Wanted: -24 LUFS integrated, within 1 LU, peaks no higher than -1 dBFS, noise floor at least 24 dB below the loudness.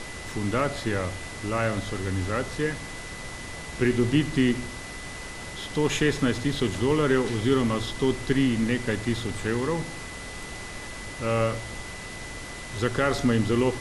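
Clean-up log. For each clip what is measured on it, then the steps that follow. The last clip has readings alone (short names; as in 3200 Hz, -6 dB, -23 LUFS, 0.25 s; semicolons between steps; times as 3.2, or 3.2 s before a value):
steady tone 2000 Hz; tone level -41 dBFS; noise floor -38 dBFS; noise floor target -52 dBFS; loudness -27.5 LUFS; peak -10.0 dBFS; loudness target -24.0 LUFS
-> notch 2000 Hz, Q 30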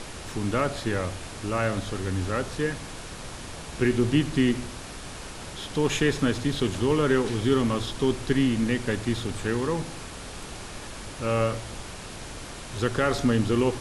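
steady tone none; noise floor -39 dBFS; noise floor target -51 dBFS
-> noise print and reduce 12 dB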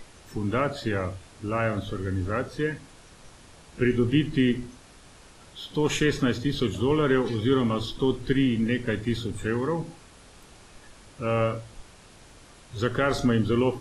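noise floor -51 dBFS; loudness -26.5 LUFS; peak -10.5 dBFS; loudness target -24.0 LUFS
-> gain +2.5 dB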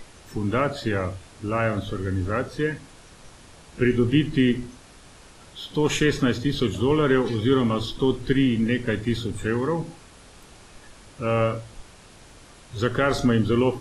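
loudness -24.0 LUFS; peak -8.0 dBFS; noise floor -49 dBFS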